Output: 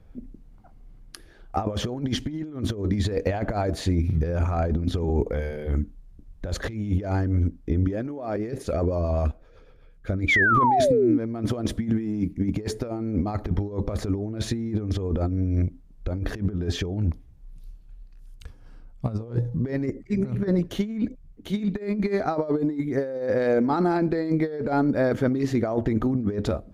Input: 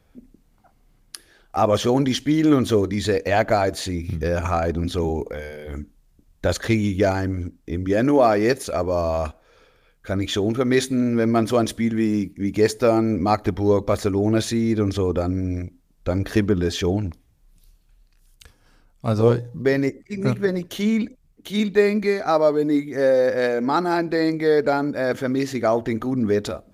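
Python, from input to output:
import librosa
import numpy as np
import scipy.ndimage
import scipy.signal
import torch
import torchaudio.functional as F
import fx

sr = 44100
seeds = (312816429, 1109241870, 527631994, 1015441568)

y = fx.tilt_eq(x, sr, slope=-2.5)
y = fx.over_compress(y, sr, threshold_db=-19.0, ratio=-0.5)
y = fx.rotary(y, sr, hz=8.0, at=(8.36, 10.57))
y = fx.spec_paint(y, sr, seeds[0], shape='fall', start_s=10.28, length_s=0.9, low_hz=270.0, high_hz=2400.0, level_db=-15.0)
y = F.gain(torch.from_numpy(y), -4.5).numpy()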